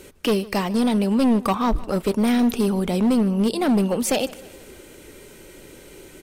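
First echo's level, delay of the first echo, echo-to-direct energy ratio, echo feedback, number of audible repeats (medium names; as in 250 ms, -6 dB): -21.0 dB, 153 ms, -19.5 dB, 56%, 3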